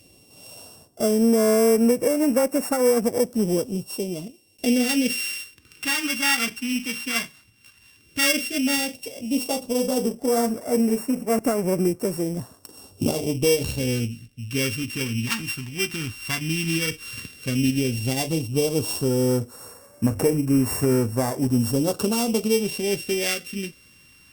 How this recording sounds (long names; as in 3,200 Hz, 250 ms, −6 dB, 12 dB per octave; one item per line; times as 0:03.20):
a buzz of ramps at a fixed pitch in blocks of 16 samples
phaser sweep stages 2, 0.11 Hz, lowest notch 530–3,100 Hz
Opus